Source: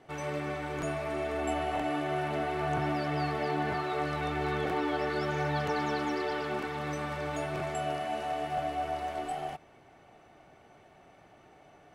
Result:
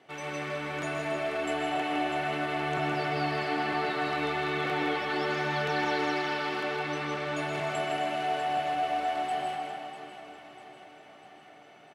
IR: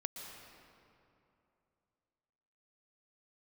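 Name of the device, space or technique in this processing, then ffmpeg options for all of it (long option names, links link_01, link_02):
PA in a hall: -filter_complex "[0:a]asettb=1/sr,asplit=3[link_01][link_02][link_03];[link_01]atrim=end=6.634[link_04];[link_02]atrim=start=6.63:end=7.37,asetpts=PTS-STARTPTS,afade=type=in:duration=0.004:curve=qsin,afade=type=out:start_time=0.736:duration=0.004:curve=qsin,highshelf=frequency=9800:gain=-11.5[link_05];[link_03]atrim=start=7.366[link_06];[link_04][link_05]acrossfade=duration=0.004:curve1=hsin:curve2=qsin[link_07];[link_07][link_06]acrossfade=duration=0.004:curve1=qsin:curve2=hsin,highpass=160,equalizer=frequency=3000:width_type=o:width=1.7:gain=7,aecho=1:1:162:0.531[link_08];[1:a]atrim=start_sample=2205[link_09];[link_08][link_09]afir=irnorm=-1:irlink=0,aecho=1:1:647|1294|1941|2588|3235|3882:0.251|0.143|0.0816|0.0465|0.0265|0.0151"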